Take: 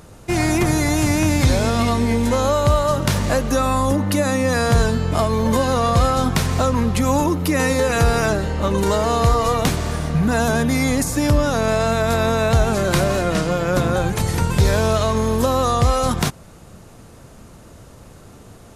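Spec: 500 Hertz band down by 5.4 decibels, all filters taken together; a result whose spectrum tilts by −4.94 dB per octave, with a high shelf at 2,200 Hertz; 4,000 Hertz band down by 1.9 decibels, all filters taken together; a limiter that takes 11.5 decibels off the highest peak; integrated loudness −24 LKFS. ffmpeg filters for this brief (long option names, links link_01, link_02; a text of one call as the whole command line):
ffmpeg -i in.wav -af "equalizer=frequency=500:width_type=o:gain=-7,highshelf=frequency=2200:gain=5,equalizer=frequency=4000:width_type=o:gain=-7,volume=1.5dB,alimiter=limit=-14.5dB:level=0:latency=1" out.wav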